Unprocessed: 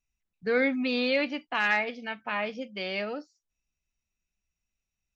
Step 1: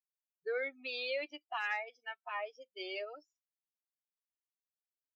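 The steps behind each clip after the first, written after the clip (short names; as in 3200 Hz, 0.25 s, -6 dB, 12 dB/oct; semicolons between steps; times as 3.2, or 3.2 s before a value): per-bin expansion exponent 2; elliptic high-pass 340 Hz, stop band 40 dB; compressor 2:1, threshold -36 dBFS, peak gain reduction 7 dB; gain -1.5 dB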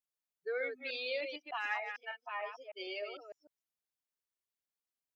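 reverse delay 0.151 s, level -6 dB; gain -1 dB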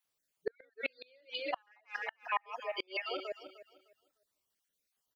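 random spectral dropouts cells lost 36%; feedback echo 0.304 s, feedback 24%, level -15 dB; flipped gate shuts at -32 dBFS, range -38 dB; gain +10.5 dB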